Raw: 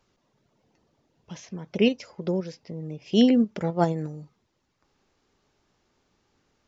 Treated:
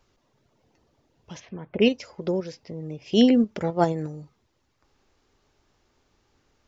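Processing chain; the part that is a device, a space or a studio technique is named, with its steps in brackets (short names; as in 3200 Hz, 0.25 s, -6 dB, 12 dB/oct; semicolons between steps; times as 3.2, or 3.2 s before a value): 1.39–1.8 LPF 3900 Hz -> 2200 Hz 24 dB/oct; low shelf boost with a cut just above (low shelf 79 Hz +7 dB; bell 180 Hz -5.5 dB 0.59 oct); gain +2 dB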